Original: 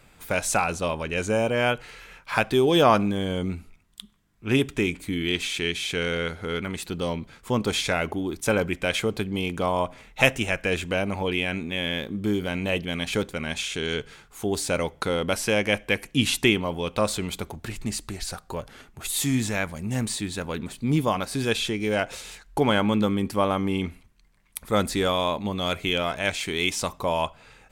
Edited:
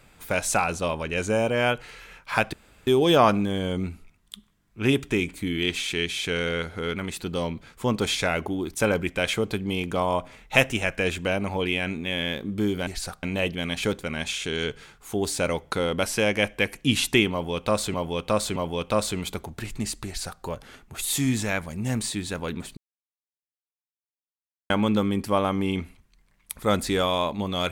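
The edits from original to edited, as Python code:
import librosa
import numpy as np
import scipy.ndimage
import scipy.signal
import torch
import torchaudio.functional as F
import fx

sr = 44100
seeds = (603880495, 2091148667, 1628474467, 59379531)

y = fx.edit(x, sr, fx.insert_room_tone(at_s=2.53, length_s=0.34),
    fx.repeat(start_s=16.62, length_s=0.62, count=3),
    fx.duplicate(start_s=18.12, length_s=0.36, to_s=12.53),
    fx.silence(start_s=20.83, length_s=1.93), tone=tone)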